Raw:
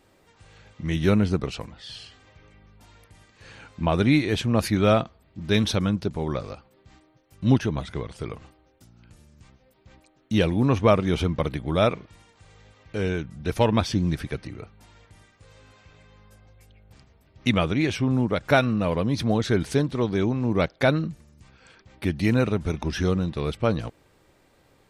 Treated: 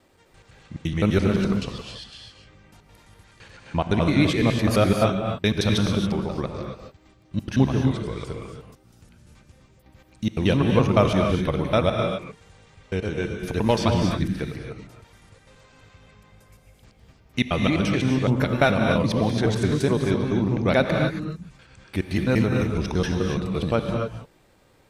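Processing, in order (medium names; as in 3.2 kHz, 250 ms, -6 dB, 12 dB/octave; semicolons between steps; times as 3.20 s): slices played last to first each 85 ms, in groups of 2; gated-style reverb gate 300 ms rising, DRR 3 dB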